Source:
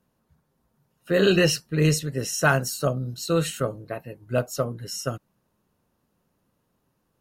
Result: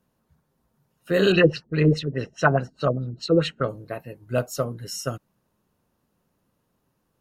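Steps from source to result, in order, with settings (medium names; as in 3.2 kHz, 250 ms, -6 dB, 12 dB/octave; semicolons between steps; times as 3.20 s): 1.32–3.69 s: LFO low-pass sine 4.8 Hz 310–4100 Hz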